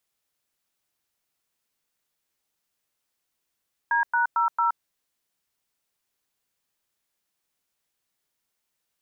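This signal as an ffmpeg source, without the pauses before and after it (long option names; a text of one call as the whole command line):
ffmpeg -f lavfi -i "aevalsrc='0.0794*clip(min(mod(t,0.225),0.122-mod(t,0.225))/0.002,0,1)*(eq(floor(t/0.225),0)*(sin(2*PI*941*mod(t,0.225))+sin(2*PI*1633*mod(t,0.225)))+eq(floor(t/0.225),1)*(sin(2*PI*941*mod(t,0.225))+sin(2*PI*1477*mod(t,0.225)))+eq(floor(t/0.225),2)*(sin(2*PI*941*mod(t,0.225))+sin(2*PI*1336*mod(t,0.225)))+eq(floor(t/0.225),3)*(sin(2*PI*941*mod(t,0.225))+sin(2*PI*1336*mod(t,0.225))))':duration=0.9:sample_rate=44100" out.wav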